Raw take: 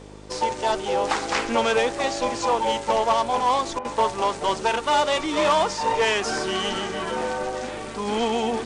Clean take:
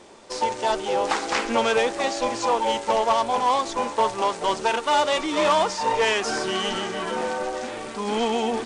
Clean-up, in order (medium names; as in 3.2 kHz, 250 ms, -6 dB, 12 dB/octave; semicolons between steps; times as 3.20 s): de-hum 51 Hz, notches 10; interpolate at 3.79 s, 56 ms